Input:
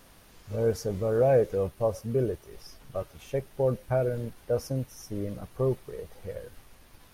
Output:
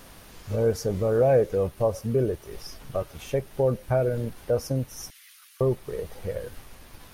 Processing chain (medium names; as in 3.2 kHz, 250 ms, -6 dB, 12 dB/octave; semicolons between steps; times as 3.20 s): 5.10–5.61 s: Bessel high-pass 2.5 kHz, order 8; in parallel at +2.5 dB: compression, threshold -34 dBFS, peak gain reduction 15.5 dB